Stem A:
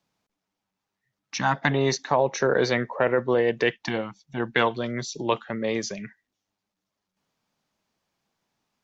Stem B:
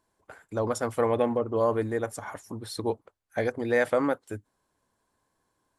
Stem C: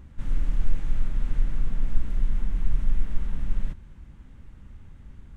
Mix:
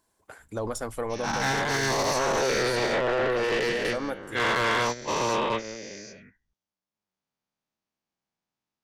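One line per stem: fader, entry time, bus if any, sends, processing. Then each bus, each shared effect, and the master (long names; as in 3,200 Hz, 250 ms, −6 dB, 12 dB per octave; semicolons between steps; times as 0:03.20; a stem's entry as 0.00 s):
−2.0 dB, 0.00 s, no send, no echo send, every bin's largest magnitude spread in time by 480 ms; noise gate −17 dBFS, range −16 dB; soft clipping −17 dBFS, distortion −8 dB
0.0 dB, 0.00 s, no send, no echo send, de-essing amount 65%; high-shelf EQ 3,600 Hz +8 dB; automatic ducking −6 dB, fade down 0.70 s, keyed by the first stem
−16.5 dB, 0.40 s, no send, echo send −18.5 dB, downward compressor, threshold −26 dBFS, peak gain reduction 14.5 dB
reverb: not used
echo: single-tap delay 773 ms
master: brickwall limiter −20.5 dBFS, peak gain reduction 8 dB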